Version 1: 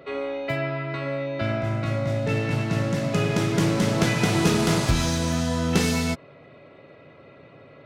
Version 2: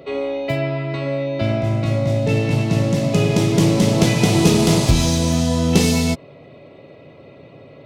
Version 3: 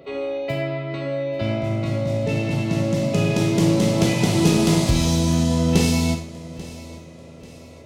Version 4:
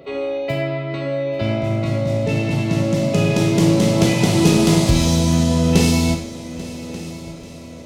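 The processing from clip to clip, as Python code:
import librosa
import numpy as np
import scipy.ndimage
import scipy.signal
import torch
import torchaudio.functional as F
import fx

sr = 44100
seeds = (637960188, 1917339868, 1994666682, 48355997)

y1 = fx.peak_eq(x, sr, hz=1500.0, db=-12.0, octaves=0.86)
y1 = y1 * librosa.db_to_amplitude(7.0)
y2 = fx.echo_feedback(y1, sr, ms=839, feedback_pct=42, wet_db=-18)
y2 = fx.rev_schroeder(y2, sr, rt60_s=0.4, comb_ms=33, drr_db=6.0)
y2 = y2 * librosa.db_to_amplitude(-4.5)
y3 = fx.echo_feedback(y2, sr, ms=1187, feedback_pct=42, wet_db=-17.5)
y3 = y3 * librosa.db_to_amplitude(3.0)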